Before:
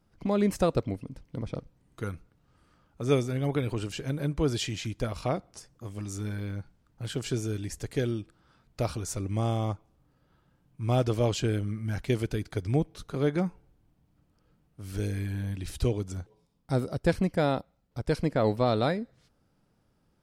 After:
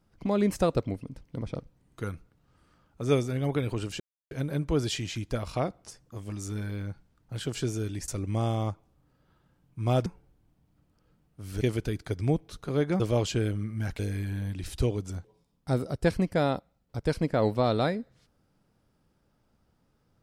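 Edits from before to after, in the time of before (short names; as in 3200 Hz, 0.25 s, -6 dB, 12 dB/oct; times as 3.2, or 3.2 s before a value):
4 insert silence 0.31 s
7.77–9.1 cut
11.08–12.07 swap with 13.46–15.01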